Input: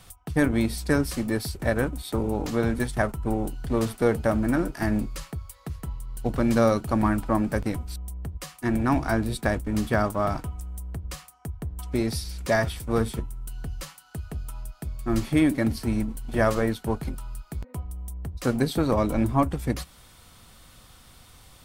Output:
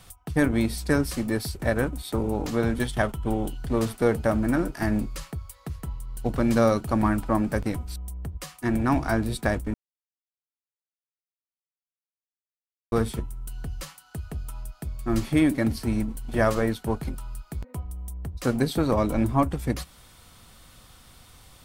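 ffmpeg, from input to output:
ffmpeg -i in.wav -filter_complex "[0:a]asettb=1/sr,asplit=3[link_01][link_02][link_03];[link_01]atrim=end=2.754[link_04];[link_02]atrim=start=2.75:end=3.58,asetpts=PTS-STARTPTS,afade=type=in:duration=0.004:curve=qsin,afade=type=out:start_time=0.826:duration=0.004:curve=qsin,equalizer=frequency=3200:width_type=o:width=0.31:gain=11.5[link_05];[link_03]atrim=start=3.576[link_06];[link_04][link_05]acrossfade=duration=0.004:curve1=hsin:curve2=qsin[link_07];[link_07][link_06]acrossfade=duration=0.004:curve1=qsin:curve2=hsin,asplit=3[link_08][link_09][link_10];[link_08]atrim=end=9.74,asetpts=PTS-STARTPTS,afade=type=out:start_time=9.736:duration=0.004:curve=hsin[link_11];[link_09]atrim=start=9.74:end=12.92,asetpts=PTS-STARTPTS,volume=0[link_12];[link_10]atrim=start=12.92,asetpts=PTS-STARTPTS,afade=type=in:duration=0.004:curve=hsin[link_13];[link_11][link_12][link_13]concat=n=3:v=0:a=1" out.wav

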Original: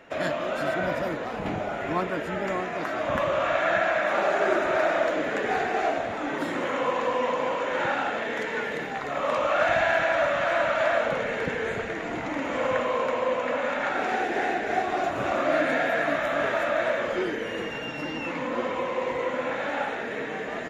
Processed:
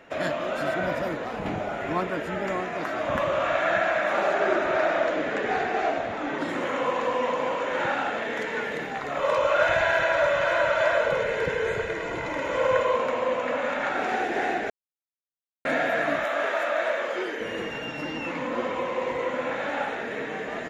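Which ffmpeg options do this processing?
ffmpeg -i in.wav -filter_complex "[0:a]asettb=1/sr,asplit=3[link_01][link_02][link_03];[link_01]atrim=end=4.334[link_04];[link_02]atrim=start=4.33:end=6.49,asetpts=PTS-STARTPTS,afade=type=in:duration=0.004:curve=qsin,afade=type=out:start_time=2.156:duration=0.004:curve=qsin,lowpass=6500[link_05];[link_03]atrim=start=6.486[link_06];[link_04][link_05]acrossfade=duration=0.004:curve1=hsin:curve2=qsin[link_07];[link_07][link_06]acrossfade=duration=0.004:curve1=qsin:curve2=hsin,asettb=1/sr,asplit=3[link_08][link_09][link_10];[link_08]atrim=end=9.194[link_11];[link_09]atrim=start=9.19:end=12.96,asetpts=PTS-STARTPTS,afade=type=in:duration=0.004:curve=qsin,afade=type=out:start_time=3.766:duration=0.004:curve=qsin,aecho=1:1:2:0.65,atrim=end_sample=166257[link_12];[link_10]atrim=start=12.956[link_13];[link_11][link_12]acrossfade=duration=0.004:curve1=hsin:curve2=qsin[link_14];[link_14][link_13]acrossfade=duration=0.004:curve1=qsin:curve2=hsin,asettb=1/sr,asplit=3[link_15][link_16][link_17];[link_15]atrim=end=16.244[link_18];[link_16]atrim=start=16.24:end=17.4,asetpts=PTS-STARTPTS,afade=type=in:duration=0.004:curve=qsin,afade=type=out:start_time=1.156:duration=0.004:curve=qsin,highpass=400[link_19];[link_17]atrim=start=17.396[link_20];[link_18][link_19]acrossfade=duration=0.004:curve1=hsin:curve2=qsin[link_21];[link_21][link_20]acrossfade=duration=0.004:curve1=qsin:curve2=hsin,asplit=3[link_22][link_23][link_24];[link_22]atrim=end=14.7,asetpts=PTS-STARTPTS,afade=type=out:start_time=14.696:duration=0.004:curve=hsin[link_25];[link_23]atrim=start=14.7:end=15.65,asetpts=PTS-STARTPTS,volume=0[link_26];[link_24]atrim=start=15.65,asetpts=PTS-STARTPTS,afade=type=in:duration=0.004:curve=hsin[link_27];[link_25][link_26][link_27]concat=n=3:v=0:a=1" out.wav

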